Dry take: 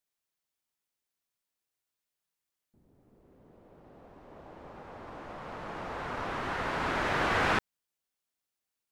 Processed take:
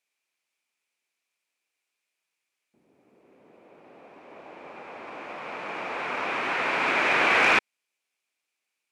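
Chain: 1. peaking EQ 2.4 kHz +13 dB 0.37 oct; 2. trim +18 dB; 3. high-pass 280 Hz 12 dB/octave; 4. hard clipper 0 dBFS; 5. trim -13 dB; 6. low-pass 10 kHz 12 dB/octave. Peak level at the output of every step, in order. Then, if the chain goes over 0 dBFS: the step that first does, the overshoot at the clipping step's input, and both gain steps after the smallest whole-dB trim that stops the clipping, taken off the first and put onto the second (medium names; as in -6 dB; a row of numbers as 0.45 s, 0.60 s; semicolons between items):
-12.5 dBFS, +5.5 dBFS, +5.5 dBFS, 0.0 dBFS, -13.0 dBFS, -12.5 dBFS; step 2, 5.5 dB; step 2 +12 dB, step 5 -7 dB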